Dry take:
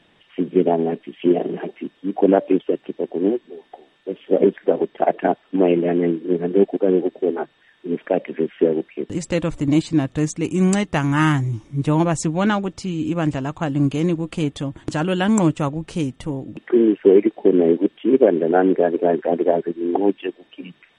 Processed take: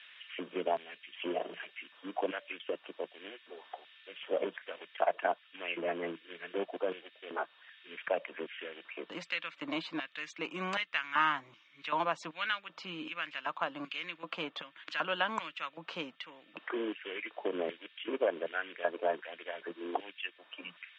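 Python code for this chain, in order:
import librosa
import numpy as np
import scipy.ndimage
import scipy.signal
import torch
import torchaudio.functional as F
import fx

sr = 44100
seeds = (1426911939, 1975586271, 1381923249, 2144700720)

y = fx.filter_lfo_highpass(x, sr, shape='square', hz=1.3, low_hz=870.0, high_hz=2000.0, q=1.5)
y = fx.cabinet(y, sr, low_hz=170.0, low_slope=12, high_hz=3800.0, hz=(170.0, 390.0, 800.0, 1900.0), db=(8, -6, -9, -5))
y = fx.band_squash(y, sr, depth_pct=40)
y = y * 10.0 ** (-4.0 / 20.0)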